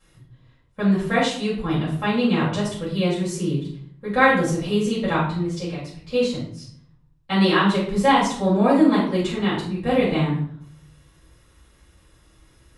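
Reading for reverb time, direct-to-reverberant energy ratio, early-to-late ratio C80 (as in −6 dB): 0.60 s, −10.0 dB, 8.0 dB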